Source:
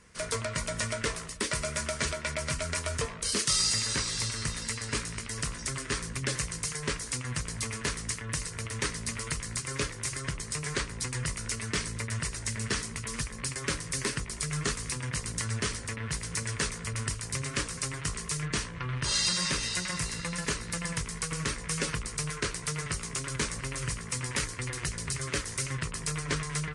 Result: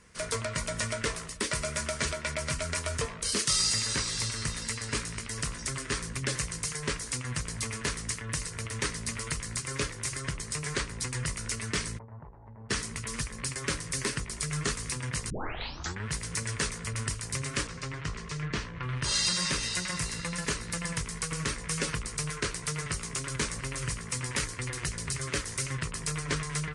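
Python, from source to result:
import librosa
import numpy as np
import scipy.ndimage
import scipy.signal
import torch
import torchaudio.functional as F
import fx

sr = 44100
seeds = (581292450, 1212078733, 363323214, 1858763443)

y = fx.ladder_lowpass(x, sr, hz=890.0, resonance_pct=75, at=(11.97, 12.69), fade=0.02)
y = fx.air_absorb(y, sr, metres=130.0, at=(17.67, 18.83))
y = fx.edit(y, sr, fx.tape_start(start_s=15.3, length_s=0.77), tone=tone)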